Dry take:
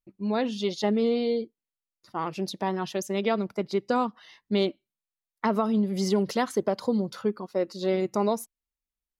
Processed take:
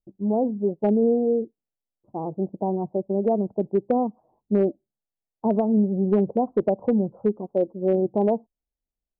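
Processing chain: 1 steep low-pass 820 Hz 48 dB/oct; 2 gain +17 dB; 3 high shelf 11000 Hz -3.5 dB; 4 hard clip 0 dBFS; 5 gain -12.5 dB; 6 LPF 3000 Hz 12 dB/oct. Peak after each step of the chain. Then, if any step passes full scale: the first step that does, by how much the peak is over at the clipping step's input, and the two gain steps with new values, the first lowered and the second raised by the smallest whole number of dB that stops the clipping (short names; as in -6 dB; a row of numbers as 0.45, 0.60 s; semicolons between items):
-13.5, +3.5, +3.5, 0.0, -12.5, -12.5 dBFS; step 2, 3.5 dB; step 2 +13 dB, step 5 -8.5 dB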